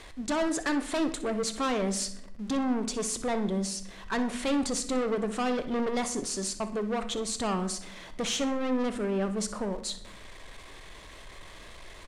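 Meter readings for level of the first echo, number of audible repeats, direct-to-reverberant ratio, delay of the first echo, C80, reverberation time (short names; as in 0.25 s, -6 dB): -15.0 dB, 2, 8.5 dB, 62 ms, 15.5 dB, 0.80 s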